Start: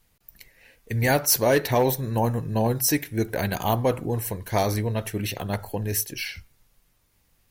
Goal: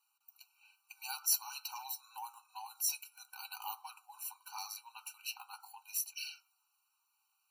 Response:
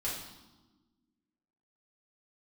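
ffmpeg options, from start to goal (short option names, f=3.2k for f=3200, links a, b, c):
-filter_complex "[0:a]acrossover=split=270|3000[a][b][c];[b]acompressor=threshold=-38dB:ratio=2[d];[a][d][c]amix=inputs=3:normalize=0,flanger=delay=7:depth=1.5:regen=58:speed=0.65:shape=sinusoidal,afftfilt=real='re*eq(mod(floor(b*sr/1024/770),2),1)':imag='im*eq(mod(floor(b*sr/1024/770),2),1)':win_size=1024:overlap=0.75,volume=-3dB"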